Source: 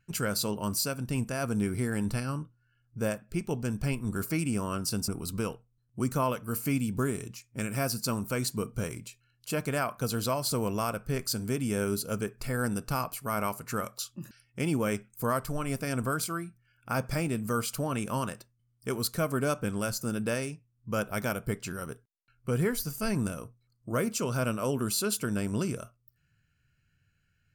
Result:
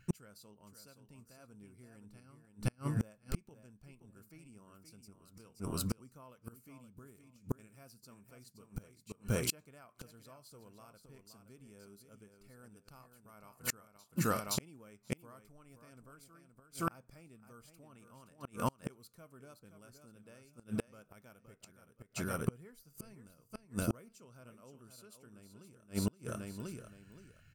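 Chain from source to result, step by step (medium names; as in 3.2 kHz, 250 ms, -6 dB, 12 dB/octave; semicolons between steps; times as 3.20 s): band-stop 1.6 kHz, Q 29; on a send: feedback delay 521 ms, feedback 21%, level -8 dB; on the sum: inverted gate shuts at -27 dBFS, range -35 dB; trim +7.5 dB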